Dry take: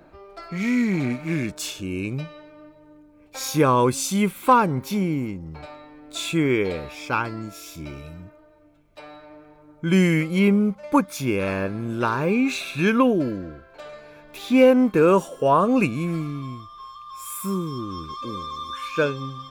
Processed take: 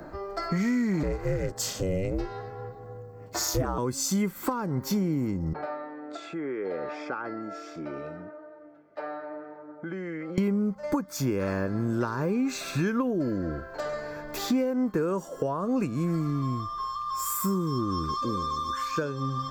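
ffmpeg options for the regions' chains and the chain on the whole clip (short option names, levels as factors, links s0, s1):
-filter_complex "[0:a]asettb=1/sr,asplit=3[s0][s1][s2];[s0]atrim=end=1.034[s3];[s1]atrim=start=1.03:end=3.78,asetpts=PTS-STARTPTS,afade=t=in:d=0.004:c=qsin,afade=t=out:st=2.746:d=0.004:c=qsin,equalizer=f=350:w=4:g=7,bandreject=f=1900:w=12,aeval=exprs='val(0)*sin(2*PI*190*n/s)':c=same[s4];[s2]atrim=start=3.776[s5];[s3][s4]acrossfade=d=0.004:c1=hsin:c2=qsin[s6];[s6][s5]acrossfade=d=0.004:c1=qsin:c2=hsin,asettb=1/sr,asplit=3[s7][s8][s9];[s7]atrim=end=5.534[s10];[s8]atrim=start=5.53:end=10.38,asetpts=PTS-STARTPTS,afade=t=in:d=0.004:c=qsin,afade=t=out:st=4.846:d=0.004:c=qsin,acompressor=threshold=0.0224:ratio=12:attack=3.2:release=140:knee=1:detection=peak,highpass=340,lowpass=2000,bandreject=f=1000:w=5.9[s11];[s9]atrim=start=10.376[s12];[s10][s11]acrossfade=d=0.004:c1=hsin:c2=qsin[s13];[s13][s12]acrossfade=d=0.004:c1=qsin:c2=hsin,acompressor=threshold=0.0224:ratio=6,superequalizer=12b=0.282:13b=0.355:16b=0.355,acrossover=split=360|3000[s14][s15][s16];[s15]acompressor=threshold=0.0141:ratio=6[s17];[s14][s17][s16]amix=inputs=3:normalize=0,volume=2.66"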